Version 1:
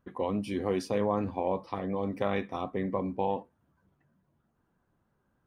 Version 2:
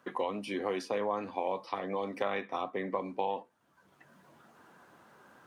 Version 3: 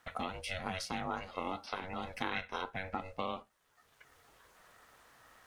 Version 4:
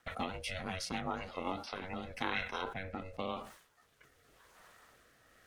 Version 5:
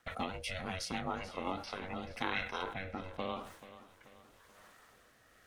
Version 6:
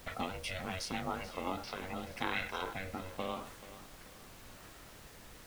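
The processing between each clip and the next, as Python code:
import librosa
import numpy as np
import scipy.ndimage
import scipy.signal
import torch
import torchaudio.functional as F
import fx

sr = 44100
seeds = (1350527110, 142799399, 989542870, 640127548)

y1 = fx.weighting(x, sr, curve='A')
y1 = fx.band_squash(y1, sr, depth_pct=70)
y2 = fx.tilt_shelf(y1, sr, db=-7.0, hz=1400.0)
y2 = y2 * np.sin(2.0 * np.pi * 280.0 * np.arange(len(y2)) / sr)
y2 = F.gain(torch.from_numpy(y2), 1.5).numpy()
y3 = fx.rotary_switch(y2, sr, hz=8.0, then_hz=0.9, switch_at_s=1.27)
y3 = fx.sustainer(y3, sr, db_per_s=97.0)
y3 = F.gain(torch.from_numpy(y3), 2.0).numpy()
y4 = fx.echo_feedback(y3, sr, ms=434, feedback_pct=47, wet_db=-15.5)
y5 = fx.dmg_noise_colour(y4, sr, seeds[0], colour='pink', level_db=-54.0)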